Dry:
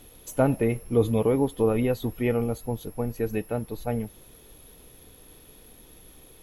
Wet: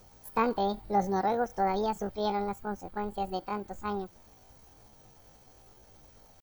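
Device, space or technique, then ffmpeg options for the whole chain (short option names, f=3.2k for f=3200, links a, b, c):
chipmunk voice: -af "asetrate=76340,aresample=44100,atempo=0.577676,volume=-5.5dB"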